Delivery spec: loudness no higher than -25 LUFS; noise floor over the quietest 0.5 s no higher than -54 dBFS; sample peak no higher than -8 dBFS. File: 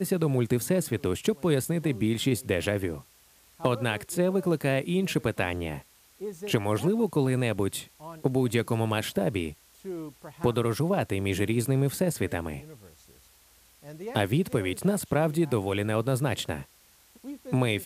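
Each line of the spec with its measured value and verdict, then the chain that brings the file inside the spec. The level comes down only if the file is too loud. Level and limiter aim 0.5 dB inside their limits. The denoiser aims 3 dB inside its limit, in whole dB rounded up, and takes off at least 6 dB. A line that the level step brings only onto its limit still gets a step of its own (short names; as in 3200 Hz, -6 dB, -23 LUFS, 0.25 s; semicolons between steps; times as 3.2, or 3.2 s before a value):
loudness -28.0 LUFS: OK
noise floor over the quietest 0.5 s -59 dBFS: OK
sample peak -9.0 dBFS: OK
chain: none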